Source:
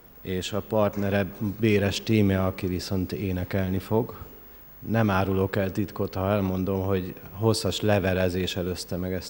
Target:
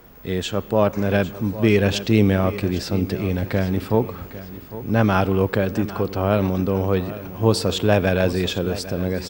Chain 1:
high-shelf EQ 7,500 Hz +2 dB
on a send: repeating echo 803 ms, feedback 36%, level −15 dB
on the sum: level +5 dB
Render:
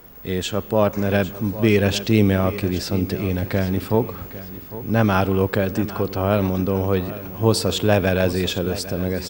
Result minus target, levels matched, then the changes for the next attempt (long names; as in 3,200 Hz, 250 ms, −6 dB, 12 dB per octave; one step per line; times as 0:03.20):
8,000 Hz band +3.0 dB
change: high-shelf EQ 7,500 Hz −4.5 dB